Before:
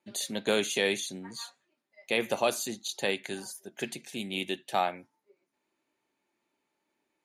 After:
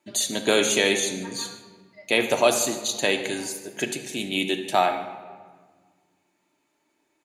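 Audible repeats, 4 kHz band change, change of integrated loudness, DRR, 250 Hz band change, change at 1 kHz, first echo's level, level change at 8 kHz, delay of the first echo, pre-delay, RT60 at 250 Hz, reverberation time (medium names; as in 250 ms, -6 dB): 1, +8.0 dB, +8.0 dB, 5.0 dB, +7.5 dB, +7.5 dB, -18.5 dB, +10.5 dB, 149 ms, 3 ms, 1.9 s, 1.6 s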